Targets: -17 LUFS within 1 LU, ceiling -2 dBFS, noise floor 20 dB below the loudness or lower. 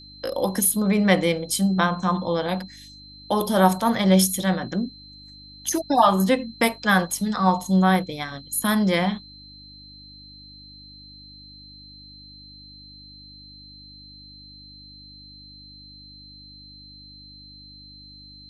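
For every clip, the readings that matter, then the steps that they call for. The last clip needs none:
hum 50 Hz; highest harmonic 300 Hz; hum level -48 dBFS; steady tone 4.1 kHz; tone level -44 dBFS; loudness -21.5 LUFS; peak level -3.0 dBFS; loudness target -17.0 LUFS
-> de-hum 50 Hz, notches 6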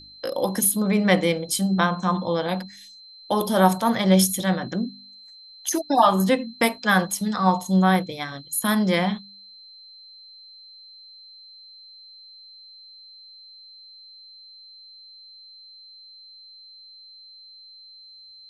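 hum not found; steady tone 4.1 kHz; tone level -44 dBFS
-> band-stop 4.1 kHz, Q 30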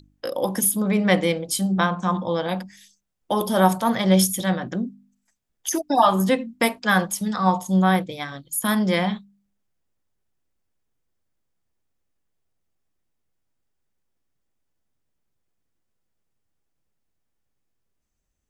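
steady tone not found; loudness -22.0 LUFS; peak level -3.5 dBFS; loudness target -17.0 LUFS
-> trim +5 dB; peak limiter -2 dBFS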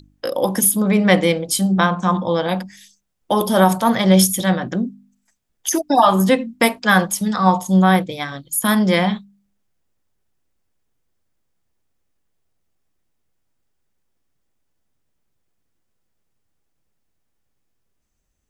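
loudness -17.0 LUFS; peak level -2.0 dBFS; noise floor -70 dBFS

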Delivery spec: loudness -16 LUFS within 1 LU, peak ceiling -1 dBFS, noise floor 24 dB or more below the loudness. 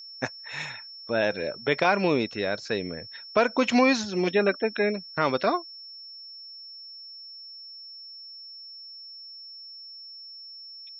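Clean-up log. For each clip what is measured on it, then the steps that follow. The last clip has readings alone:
steady tone 5.4 kHz; tone level -41 dBFS; loudness -26.0 LUFS; peak level -8.0 dBFS; loudness target -16.0 LUFS
-> band-stop 5.4 kHz, Q 30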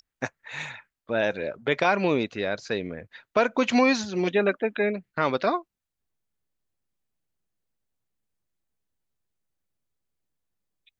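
steady tone not found; loudness -26.0 LUFS; peak level -8.0 dBFS; loudness target -16.0 LUFS
-> trim +10 dB; peak limiter -1 dBFS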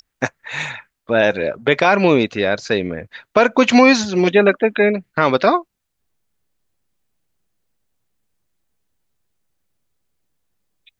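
loudness -16.0 LUFS; peak level -1.0 dBFS; noise floor -76 dBFS

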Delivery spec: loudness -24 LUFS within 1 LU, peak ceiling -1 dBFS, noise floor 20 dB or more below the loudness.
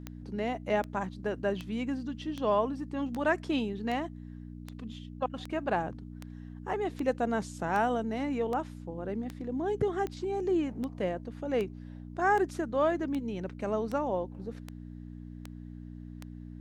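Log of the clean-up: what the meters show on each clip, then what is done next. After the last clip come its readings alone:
clicks found 22; hum 60 Hz; highest harmonic 300 Hz; hum level -42 dBFS; loudness -32.5 LUFS; peak level -15.5 dBFS; loudness target -24.0 LUFS
-> de-click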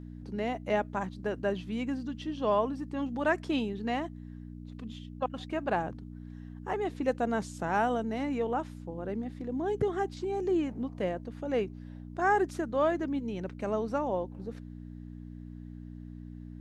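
clicks found 0; hum 60 Hz; highest harmonic 300 Hz; hum level -42 dBFS
-> de-hum 60 Hz, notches 5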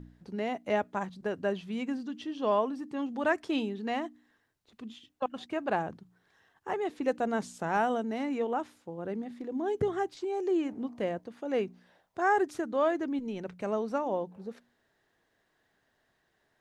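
hum not found; loudness -32.5 LUFS; peak level -15.5 dBFS; loudness target -24.0 LUFS
-> trim +8.5 dB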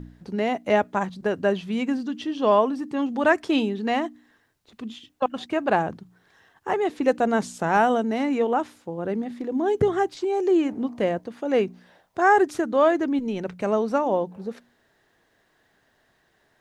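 loudness -24.0 LUFS; peak level -7.0 dBFS; noise floor -66 dBFS

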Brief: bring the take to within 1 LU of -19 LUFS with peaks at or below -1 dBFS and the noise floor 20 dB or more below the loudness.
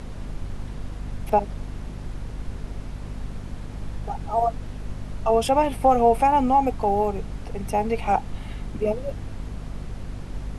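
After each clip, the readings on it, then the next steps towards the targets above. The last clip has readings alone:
hum 50 Hz; highest harmonic 250 Hz; hum level -33 dBFS; noise floor -37 dBFS; noise floor target -43 dBFS; loudness -23.0 LUFS; peak level -6.0 dBFS; loudness target -19.0 LUFS
-> hum notches 50/100/150/200/250 Hz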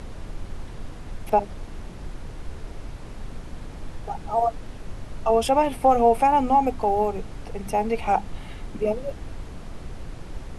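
hum not found; noise floor -39 dBFS; noise floor target -43 dBFS
-> noise print and reduce 6 dB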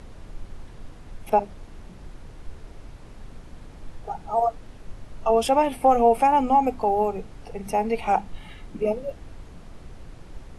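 noise floor -44 dBFS; loudness -22.5 LUFS; peak level -6.5 dBFS; loudness target -19.0 LUFS
-> trim +3.5 dB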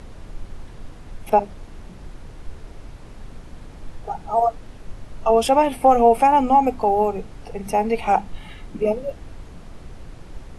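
loudness -19.0 LUFS; peak level -3.0 dBFS; noise floor -41 dBFS

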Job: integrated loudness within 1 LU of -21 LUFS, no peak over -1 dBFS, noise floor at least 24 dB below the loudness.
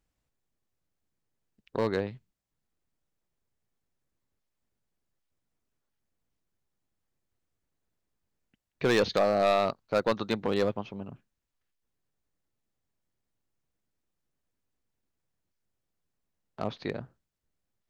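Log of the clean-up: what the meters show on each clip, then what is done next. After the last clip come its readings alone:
clipped samples 0.3%; clipping level -18.0 dBFS; loudness -29.0 LUFS; peak level -18.0 dBFS; loudness target -21.0 LUFS
-> clip repair -18 dBFS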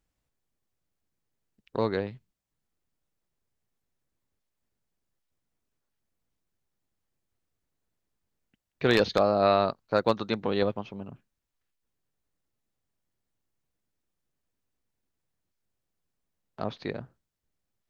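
clipped samples 0.0%; loudness -27.0 LUFS; peak level -9.0 dBFS; loudness target -21.0 LUFS
-> trim +6 dB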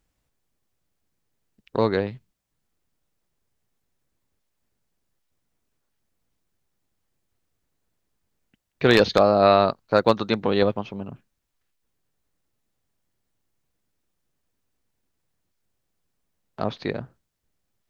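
loudness -21.0 LUFS; peak level -3.0 dBFS; noise floor -78 dBFS

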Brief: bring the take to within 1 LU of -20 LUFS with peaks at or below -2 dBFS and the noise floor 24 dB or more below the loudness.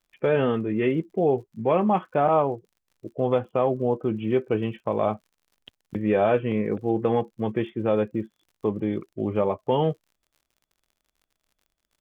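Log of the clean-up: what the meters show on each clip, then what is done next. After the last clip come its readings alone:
tick rate 55 per s; loudness -25.0 LUFS; peak level -9.5 dBFS; loudness target -20.0 LUFS
-> de-click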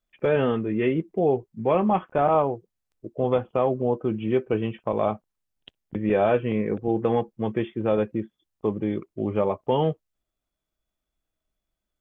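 tick rate 0.083 per s; loudness -25.0 LUFS; peak level -9.5 dBFS; loudness target -20.0 LUFS
-> trim +5 dB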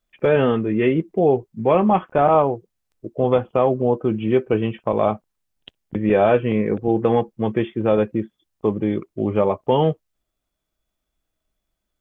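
loudness -20.0 LUFS; peak level -4.5 dBFS; noise floor -79 dBFS

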